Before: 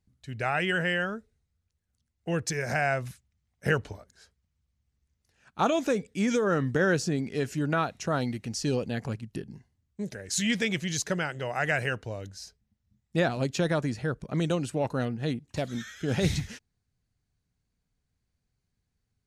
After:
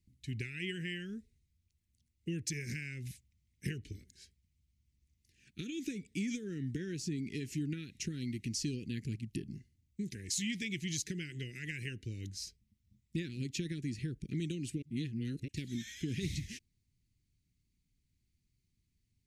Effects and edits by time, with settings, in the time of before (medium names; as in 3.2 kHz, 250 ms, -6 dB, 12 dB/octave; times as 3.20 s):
14.82–15.48 s: reverse
whole clip: compression 5:1, threshold -34 dBFS; elliptic band-stop 350–2100 Hz, stop band 50 dB; trim +1 dB